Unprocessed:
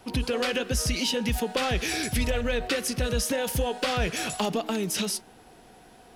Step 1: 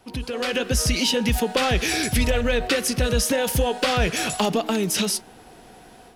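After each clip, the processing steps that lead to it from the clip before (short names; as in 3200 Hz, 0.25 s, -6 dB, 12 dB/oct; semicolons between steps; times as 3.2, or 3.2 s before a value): AGC gain up to 9 dB; gain -3.5 dB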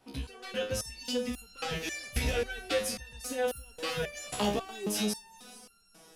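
notches 50/100/150/200/250 Hz; diffused feedback echo 0.454 s, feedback 40%, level -12.5 dB; stepped resonator 3.7 Hz 68–1400 Hz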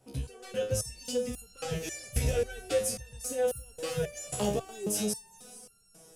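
ten-band EQ 125 Hz +10 dB, 250 Hz -6 dB, 500 Hz +5 dB, 1000 Hz -6 dB, 2000 Hz -5 dB, 4000 Hz -7 dB, 8000 Hz +7 dB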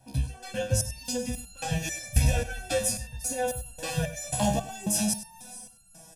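comb 1.2 ms, depth 96%; echo 98 ms -14.5 dB; gain +2.5 dB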